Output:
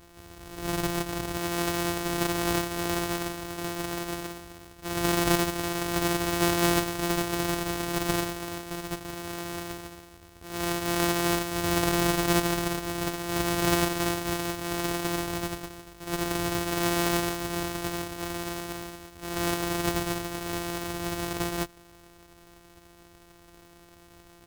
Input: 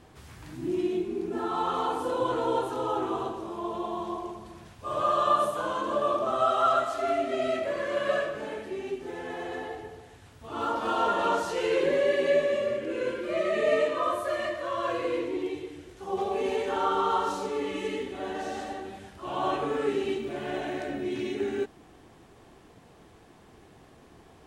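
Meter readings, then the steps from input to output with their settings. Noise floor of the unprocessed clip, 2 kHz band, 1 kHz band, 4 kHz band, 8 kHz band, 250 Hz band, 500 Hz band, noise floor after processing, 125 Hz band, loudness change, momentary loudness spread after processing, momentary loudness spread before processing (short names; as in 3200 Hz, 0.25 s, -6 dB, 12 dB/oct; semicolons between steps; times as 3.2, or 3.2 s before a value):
-55 dBFS, +4.0 dB, -3.5 dB, +7.5 dB, +16.5 dB, +5.0 dB, -4.5 dB, -54 dBFS, +13.0 dB, +0.5 dB, 12 LU, 12 LU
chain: sample sorter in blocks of 256 samples; high shelf 6000 Hz +6 dB; comb 2.7 ms, depth 50%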